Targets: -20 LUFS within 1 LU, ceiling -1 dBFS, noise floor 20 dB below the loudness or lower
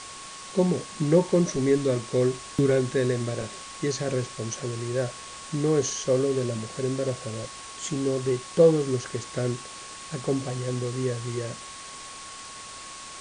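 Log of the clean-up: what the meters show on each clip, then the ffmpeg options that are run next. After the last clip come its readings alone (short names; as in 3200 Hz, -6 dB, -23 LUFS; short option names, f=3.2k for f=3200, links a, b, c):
steady tone 1100 Hz; tone level -44 dBFS; noise floor -41 dBFS; noise floor target -47 dBFS; loudness -26.5 LUFS; peak -8.0 dBFS; loudness target -20.0 LUFS
-> -af "bandreject=f=1.1k:w=30"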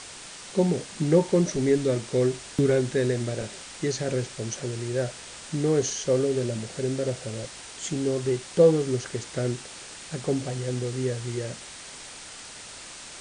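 steady tone none; noise floor -43 dBFS; noise floor target -47 dBFS
-> -af "afftdn=nr=6:nf=-43"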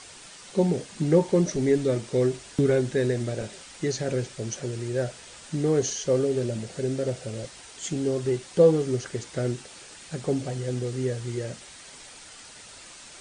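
noise floor -46 dBFS; noise floor target -47 dBFS
-> -af "afftdn=nr=6:nf=-46"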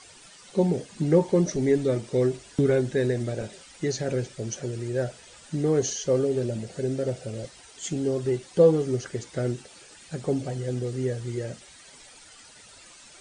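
noise floor -50 dBFS; loudness -26.5 LUFS; peak -8.0 dBFS; loudness target -20.0 LUFS
-> -af "volume=6.5dB"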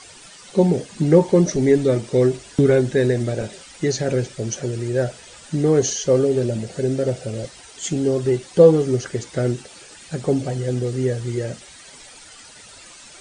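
loudness -20.0 LUFS; peak -1.5 dBFS; noise floor -44 dBFS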